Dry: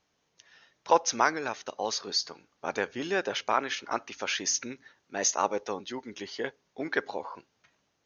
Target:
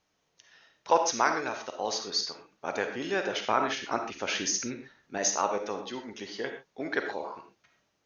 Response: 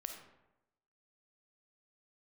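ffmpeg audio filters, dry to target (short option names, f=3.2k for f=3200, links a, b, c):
-filter_complex "[0:a]asettb=1/sr,asplit=3[a][b][c];[a]atrim=end=3.484[d];[b]atrim=start=3.48:end=5.18,asetpts=PTS-STARTPTS,afade=t=in:d=0.004:c=qsin,afade=t=out:st=1.696:d=0.004:c=qsin,lowshelf=f=310:g=8.5[e];[c]atrim=start=5.176[f];[d][e]acrossfade=d=0.004:c1=hsin:c2=qsin[g];[g][f]acrossfade=d=0.004:c1=qsin:c2=hsin[h];[1:a]atrim=start_sample=2205,afade=t=out:st=0.19:d=0.01,atrim=end_sample=8820[i];[h][i]afir=irnorm=-1:irlink=0,volume=2.5dB"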